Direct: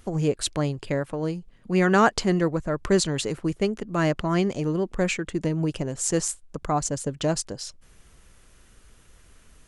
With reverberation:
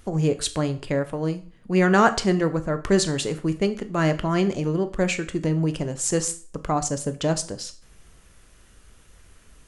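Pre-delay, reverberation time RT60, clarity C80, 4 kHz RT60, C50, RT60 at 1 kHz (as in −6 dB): 6 ms, 0.40 s, 19.5 dB, 0.40 s, 15.5 dB, 0.40 s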